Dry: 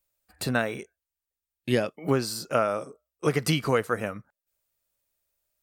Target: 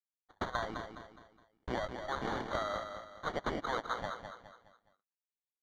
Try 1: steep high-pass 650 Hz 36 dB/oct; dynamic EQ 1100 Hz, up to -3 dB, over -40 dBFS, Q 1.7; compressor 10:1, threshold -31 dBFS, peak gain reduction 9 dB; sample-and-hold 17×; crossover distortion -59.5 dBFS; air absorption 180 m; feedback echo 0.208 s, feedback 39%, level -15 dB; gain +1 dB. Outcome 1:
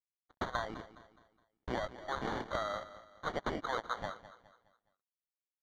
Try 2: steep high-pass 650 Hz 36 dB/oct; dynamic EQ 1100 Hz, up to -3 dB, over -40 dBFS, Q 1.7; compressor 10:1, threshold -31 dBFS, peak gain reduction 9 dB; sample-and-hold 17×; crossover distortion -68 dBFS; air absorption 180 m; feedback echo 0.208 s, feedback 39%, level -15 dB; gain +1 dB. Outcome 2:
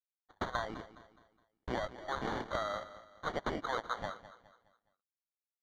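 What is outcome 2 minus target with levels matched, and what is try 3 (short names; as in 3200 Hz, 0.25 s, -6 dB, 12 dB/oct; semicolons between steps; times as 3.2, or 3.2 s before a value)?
echo-to-direct -7.5 dB
steep high-pass 650 Hz 36 dB/oct; dynamic EQ 1100 Hz, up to -3 dB, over -40 dBFS, Q 1.7; compressor 10:1, threshold -31 dBFS, peak gain reduction 9 dB; sample-and-hold 17×; crossover distortion -68 dBFS; air absorption 180 m; feedback echo 0.208 s, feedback 39%, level -7.5 dB; gain +1 dB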